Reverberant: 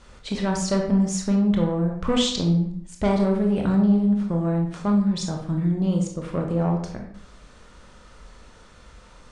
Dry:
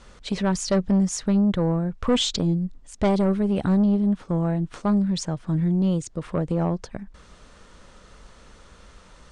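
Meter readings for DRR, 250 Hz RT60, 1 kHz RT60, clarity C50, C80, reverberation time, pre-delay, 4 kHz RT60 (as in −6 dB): 1.0 dB, 0.60 s, 0.65 s, 5.0 dB, 9.0 dB, 0.65 s, 21 ms, 0.45 s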